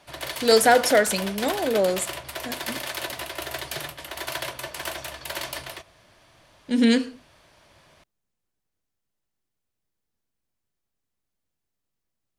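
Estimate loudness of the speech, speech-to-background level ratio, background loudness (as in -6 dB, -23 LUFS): -21.0 LUFS, 11.0 dB, -32.0 LUFS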